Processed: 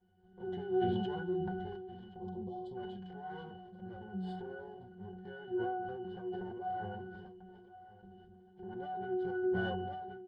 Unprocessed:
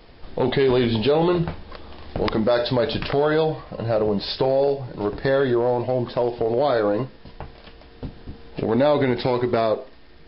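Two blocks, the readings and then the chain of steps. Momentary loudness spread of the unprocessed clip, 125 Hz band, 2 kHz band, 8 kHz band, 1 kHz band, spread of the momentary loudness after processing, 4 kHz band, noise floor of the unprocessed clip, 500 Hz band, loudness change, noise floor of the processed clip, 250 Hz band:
19 LU, -17.5 dB, -15.0 dB, no reading, -13.5 dB, 20 LU, -23.0 dB, -46 dBFS, -19.0 dB, -17.5 dB, -60 dBFS, -15.5 dB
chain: comb filter that takes the minimum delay 5.6 ms; peaking EQ 74 Hz -6.5 dB 0.85 oct; spectral selection erased 2.18–2.75 s, 1.1–3 kHz; pitch-class resonator F#, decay 0.44 s; on a send: feedback delay 1075 ms, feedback 33%, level -17 dB; on the sum: decay stretcher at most 26 dB/s; trim -3.5 dB

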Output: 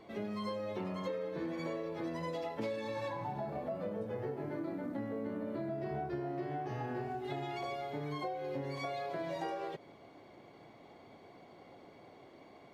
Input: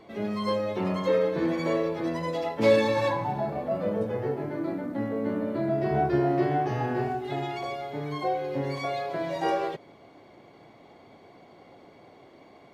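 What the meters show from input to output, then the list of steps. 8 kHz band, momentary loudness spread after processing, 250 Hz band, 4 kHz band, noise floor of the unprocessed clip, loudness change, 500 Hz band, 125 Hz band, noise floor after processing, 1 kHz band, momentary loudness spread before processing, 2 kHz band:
no reading, 18 LU, -11.0 dB, -10.5 dB, -53 dBFS, -11.5 dB, -12.0 dB, -11.0 dB, -57 dBFS, -11.0 dB, 7 LU, -11.0 dB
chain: compression 12:1, threshold -31 dBFS, peak gain reduction 16 dB; trim -4 dB

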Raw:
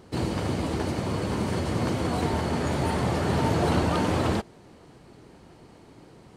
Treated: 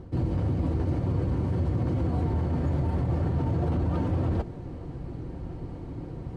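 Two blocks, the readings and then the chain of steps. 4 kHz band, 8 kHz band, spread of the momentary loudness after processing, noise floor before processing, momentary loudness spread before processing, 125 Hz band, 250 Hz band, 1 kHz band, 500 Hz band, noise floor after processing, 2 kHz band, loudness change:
under -15 dB, under -20 dB, 11 LU, -52 dBFS, 5 LU, +3.0 dB, -2.5 dB, -9.5 dB, -6.0 dB, -39 dBFS, -13.5 dB, -2.0 dB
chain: tilt EQ -4 dB/octave; peak limiter -12.5 dBFS, peak gain reduction 10 dB; reverse; compression 4:1, threshold -30 dBFS, peak gain reduction 11.5 dB; reverse; comb of notches 210 Hz; trim +5 dB

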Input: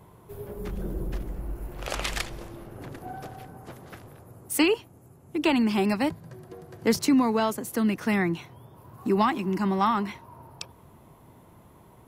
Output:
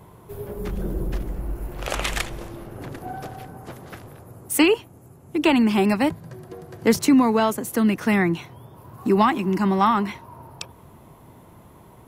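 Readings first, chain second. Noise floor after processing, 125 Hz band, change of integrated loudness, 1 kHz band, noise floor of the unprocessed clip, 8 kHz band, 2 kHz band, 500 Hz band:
-49 dBFS, +5.0 dB, +5.0 dB, +5.0 dB, -54 dBFS, +4.5 dB, +5.0 dB, +5.0 dB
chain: dynamic bell 4.8 kHz, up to -5 dB, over -50 dBFS, Q 2.7; trim +5 dB

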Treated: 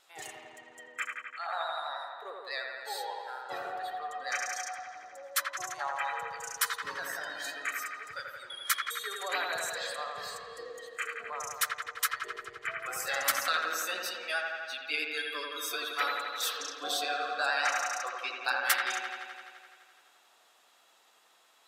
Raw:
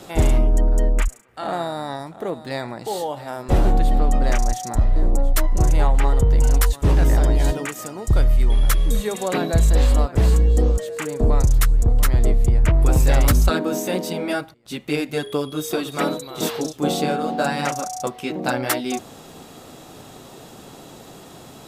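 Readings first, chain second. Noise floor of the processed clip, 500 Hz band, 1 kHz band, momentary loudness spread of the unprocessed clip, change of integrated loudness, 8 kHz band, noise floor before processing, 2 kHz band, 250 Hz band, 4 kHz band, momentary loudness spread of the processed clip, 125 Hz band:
-64 dBFS, -16.5 dB, -7.0 dB, 11 LU, -12.5 dB, -6.0 dB, -43 dBFS, -0.5 dB, -30.0 dB, -3.0 dB, 13 LU, under -40 dB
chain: spectral noise reduction 15 dB; high-pass 1.4 kHz 12 dB/octave; vibrato 9.2 Hz 33 cents; treble shelf 4.5 kHz -6 dB; on a send: feedback echo behind a low-pass 85 ms, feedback 75%, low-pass 2.6 kHz, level -3 dB

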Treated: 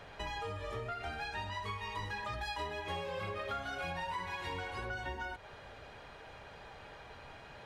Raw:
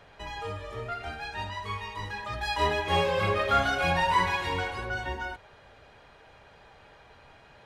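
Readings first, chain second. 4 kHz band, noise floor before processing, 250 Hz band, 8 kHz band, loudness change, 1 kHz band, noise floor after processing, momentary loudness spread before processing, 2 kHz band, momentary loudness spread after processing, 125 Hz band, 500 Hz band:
-10.0 dB, -55 dBFS, -11.0 dB, -10.0 dB, -11.0 dB, -11.5 dB, -53 dBFS, 13 LU, -10.0 dB, 13 LU, -9.5 dB, -11.0 dB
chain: compression 12:1, threshold -39 dBFS, peak gain reduction 20 dB; trim +2.5 dB

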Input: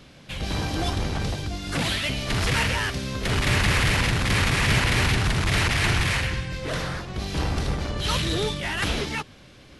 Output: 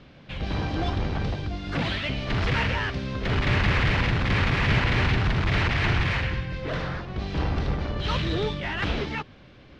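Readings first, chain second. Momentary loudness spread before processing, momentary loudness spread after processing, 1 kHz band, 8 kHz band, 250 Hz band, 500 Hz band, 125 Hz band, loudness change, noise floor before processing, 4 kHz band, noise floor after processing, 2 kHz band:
10 LU, 9 LU, -1.0 dB, under -15 dB, -0.5 dB, -0.5 dB, 0.0 dB, -1.5 dB, -49 dBFS, -5.5 dB, -50 dBFS, -2.0 dB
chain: distance through air 220 m

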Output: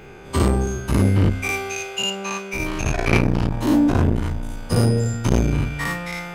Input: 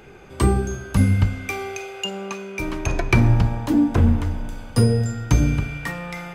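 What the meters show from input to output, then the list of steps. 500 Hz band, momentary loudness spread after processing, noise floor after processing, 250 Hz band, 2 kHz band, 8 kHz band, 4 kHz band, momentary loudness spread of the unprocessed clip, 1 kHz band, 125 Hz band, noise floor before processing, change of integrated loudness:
+2.5 dB, 9 LU, -37 dBFS, +1.0 dB, +3.0 dB, +3.5 dB, +5.0 dB, 12 LU, +2.0 dB, -1.0 dB, -41 dBFS, +0.5 dB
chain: every event in the spectrogram widened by 120 ms; transformer saturation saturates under 410 Hz; trim -1 dB

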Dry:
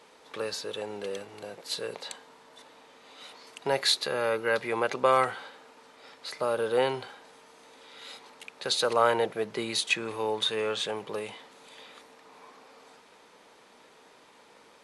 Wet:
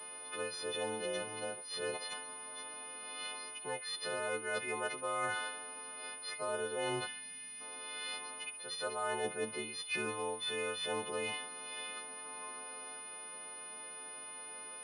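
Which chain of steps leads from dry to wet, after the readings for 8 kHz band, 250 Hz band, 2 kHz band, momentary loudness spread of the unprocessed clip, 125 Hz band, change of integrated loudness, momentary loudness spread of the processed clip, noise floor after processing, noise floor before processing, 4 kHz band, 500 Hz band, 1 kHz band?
+0.5 dB, -8.0 dB, -5.0 dB, 22 LU, -8.0 dB, -10.5 dB, 8 LU, -48 dBFS, -57 dBFS, -9.0 dB, -10.0 dB, -9.5 dB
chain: partials quantised in pitch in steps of 3 st; reverse; compression 16:1, threshold -34 dBFS, peak gain reduction 22.5 dB; reverse; time-frequency box 7.07–7.61 s, 260–1500 Hz -15 dB; distance through air 72 m; on a send: feedback echo behind a high-pass 68 ms, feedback 64%, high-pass 2.3 kHz, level -11.5 dB; on the sum: class-D stage that switches slowly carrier 9.6 kHz; trim +1 dB

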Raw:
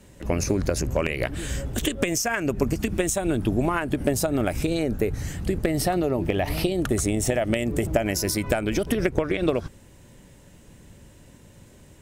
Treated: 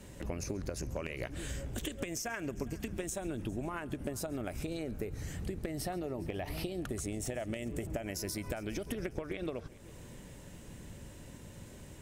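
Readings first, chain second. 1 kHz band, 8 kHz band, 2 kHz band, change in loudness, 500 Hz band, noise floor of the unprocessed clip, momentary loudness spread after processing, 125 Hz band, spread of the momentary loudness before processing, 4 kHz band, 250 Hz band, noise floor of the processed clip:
-14.5 dB, -13.0 dB, -14.0 dB, -14.0 dB, -14.5 dB, -51 dBFS, 13 LU, -13.0 dB, 4 LU, -13.0 dB, -14.0 dB, -51 dBFS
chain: compression 3:1, threshold -40 dBFS, peak gain reduction 17.5 dB; multi-head delay 136 ms, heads first and third, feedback 57%, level -22 dB

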